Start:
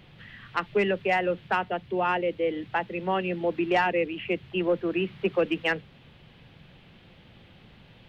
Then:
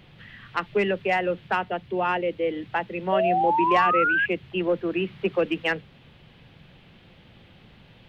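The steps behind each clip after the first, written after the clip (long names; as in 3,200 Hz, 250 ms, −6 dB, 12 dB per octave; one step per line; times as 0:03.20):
sound drawn into the spectrogram rise, 0:03.12–0:04.26, 600–1,700 Hz −23 dBFS
level +1 dB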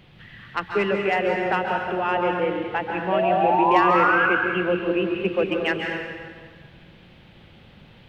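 dense smooth reverb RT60 1.8 s, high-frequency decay 0.8×, pre-delay 120 ms, DRR 1 dB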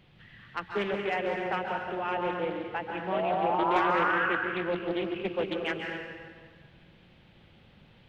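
highs frequency-modulated by the lows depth 0.37 ms
level −8 dB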